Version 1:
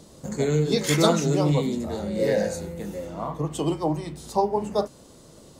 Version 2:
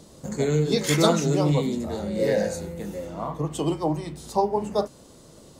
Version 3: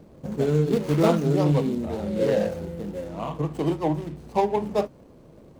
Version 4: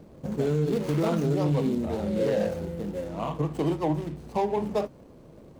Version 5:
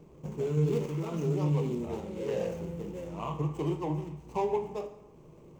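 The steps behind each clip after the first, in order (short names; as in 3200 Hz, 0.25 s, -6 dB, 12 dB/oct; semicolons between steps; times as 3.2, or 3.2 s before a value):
nothing audible
median filter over 25 samples; gain +1 dB
limiter -17.5 dBFS, peak gain reduction 10 dB
ripple EQ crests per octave 0.73, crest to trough 8 dB; random-step tremolo 3.5 Hz; plate-style reverb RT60 0.9 s, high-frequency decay 0.75×, DRR 7.5 dB; gain -5 dB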